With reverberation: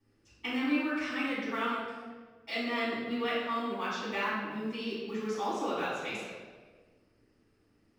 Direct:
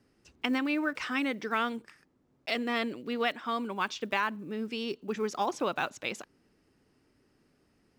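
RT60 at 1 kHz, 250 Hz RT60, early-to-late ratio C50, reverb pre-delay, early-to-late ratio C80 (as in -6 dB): 1.3 s, 1.5 s, -1.0 dB, 3 ms, 1.5 dB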